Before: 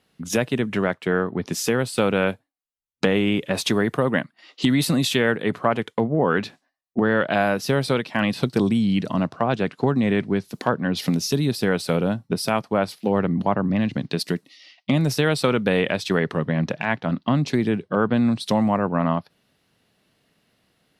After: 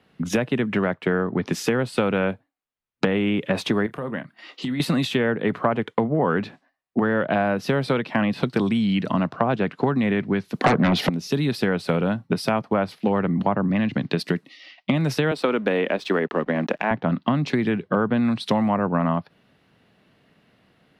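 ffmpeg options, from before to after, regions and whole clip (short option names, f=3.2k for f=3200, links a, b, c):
-filter_complex "[0:a]asettb=1/sr,asplit=3[a][b][c];[a]atrim=end=3.864[d];[b]atrim=start=3.86:end=4.8,asetpts=PTS-STARTPTS,afade=t=in:d=0.004:c=qsin,afade=t=out:st=0.936:d=0.004:c=qsin,highshelf=f=6.6k:g=10.5,acompressor=threshold=-39dB:ratio=2.5:attack=3.2:release=140:knee=1:detection=peak,asplit=2[e][f];[f]adelay=28,volume=-13dB[g];[e][g]amix=inputs=2:normalize=0,atrim=end_sample=41454[h];[c]atrim=start=4.796[i];[d][h]acrossfade=d=0.004:c1=hsin:c2=qsin[j];[j][i]acrossfade=d=0.004:c1=qsin:c2=hsin,asettb=1/sr,asplit=3[k][l][m];[k]atrim=end=10.644[n];[l]atrim=start=10.64:end=11.09,asetpts=PTS-STARTPTS,afade=t=in:d=0.004:c=qsin,afade=t=out:st=0.446:d=0.004:c=qsin,equalizer=f=740:w=7.3:g=7,aeval=exprs='0.631*sin(PI/2*6.31*val(0)/0.631)':c=same[o];[m]atrim=start=11.086[p];[n][o]acrossfade=d=0.004:c1=hsin:c2=qsin[q];[q][p]acrossfade=d=0.004:c1=qsin:c2=hsin,asettb=1/sr,asplit=3[r][s][t];[r]atrim=end=15.314[u];[s]atrim=start=15.31:end=16.91,asetpts=PTS-STARTPTS,afade=t=in:d=0.004:c=qsin,afade=t=out:st=1.596:d=0.004:c=qsin,highpass=f=240:w=0.5412,highpass=f=240:w=1.3066,aeval=exprs='sgn(val(0))*max(abs(val(0))-0.00335,0)':c=same[v];[t]atrim=start=16.906[w];[u][v]acrossfade=d=0.004:c1=hsin:c2=qsin[x];[x][w]acrossfade=d=0.004:c1=qsin:c2=hsin,bass=f=250:g=6,treble=f=4k:g=-14,acrossover=split=140|1000[y][z][aa];[y]acompressor=threshold=-38dB:ratio=4[ab];[z]acompressor=threshold=-26dB:ratio=4[ac];[aa]acompressor=threshold=-35dB:ratio=4[ad];[ab][ac][ad]amix=inputs=3:normalize=0,lowshelf=f=140:g=-9.5,volume=7dB"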